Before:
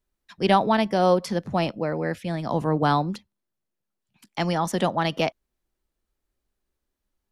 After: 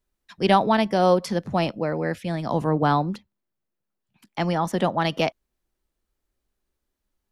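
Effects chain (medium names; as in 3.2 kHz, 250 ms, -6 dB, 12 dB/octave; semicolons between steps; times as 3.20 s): 2.70–5.00 s: peaking EQ 7.5 kHz -6.5 dB 2.2 oct; trim +1 dB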